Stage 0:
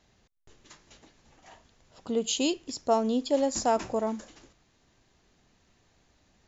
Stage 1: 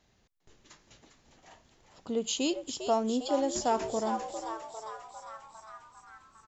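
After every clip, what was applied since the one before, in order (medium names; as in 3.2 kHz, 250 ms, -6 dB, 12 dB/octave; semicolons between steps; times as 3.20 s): frequency-shifting echo 402 ms, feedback 64%, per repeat +110 Hz, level -9 dB; trim -3 dB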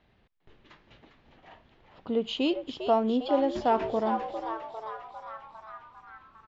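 low-pass 3.4 kHz 24 dB/octave; trim +3.5 dB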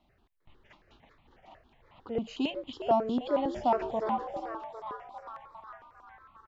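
stepped phaser 11 Hz 450–1600 Hz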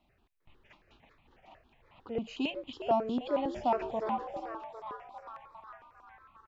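peaking EQ 2.5 kHz +6.5 dB 0.25 oct; trim -2.5 dB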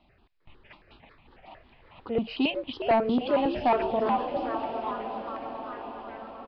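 echo that smears into a reverb 1011 ms, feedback 50%, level -11 dB; sine folder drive 4 dB, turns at -17 dBFS; resampled via 11.025 kHz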